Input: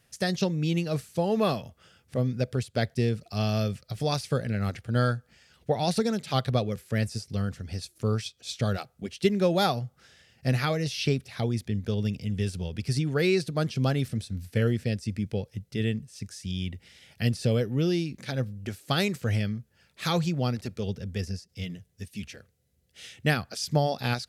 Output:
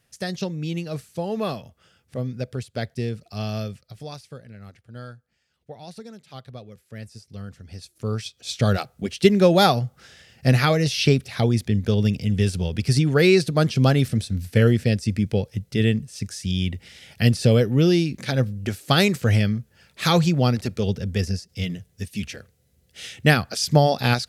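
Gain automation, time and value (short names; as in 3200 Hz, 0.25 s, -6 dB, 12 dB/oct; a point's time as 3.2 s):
3.58 s -1.5 dB
4.42 s -14 dB
6.59 s -14 dB
7.78 s -4 dB
8.71 s +8 dB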